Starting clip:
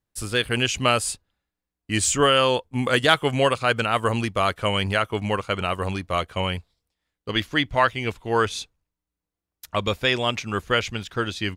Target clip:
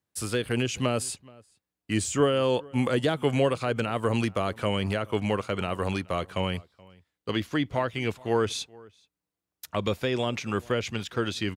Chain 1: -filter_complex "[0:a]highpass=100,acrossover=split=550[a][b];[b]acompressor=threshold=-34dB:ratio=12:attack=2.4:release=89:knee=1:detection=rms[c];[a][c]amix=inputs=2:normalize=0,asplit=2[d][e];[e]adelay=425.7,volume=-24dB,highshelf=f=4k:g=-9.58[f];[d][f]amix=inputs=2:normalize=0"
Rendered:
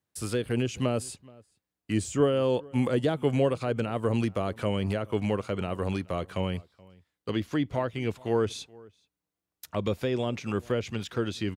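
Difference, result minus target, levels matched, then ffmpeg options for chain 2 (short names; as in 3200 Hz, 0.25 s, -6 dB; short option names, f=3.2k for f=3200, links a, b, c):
compressor: peak gain reduction +6.5 dB
-filter_complex "[0:a]highpass=100,acrossover=split=550[a][b];[b]acompressor=threshold=-27dB:ratio=12:attack=2.4:release=89:knee=1:detection=rms[c];[a][c]amix=inputs=2:normalize=0,asplit=2[d][e];[e]adelay=425.7,volume=-24dB,highshelf=f=4k:g=-9.58[f];[d][f]amix=inputs=2:normalize=0"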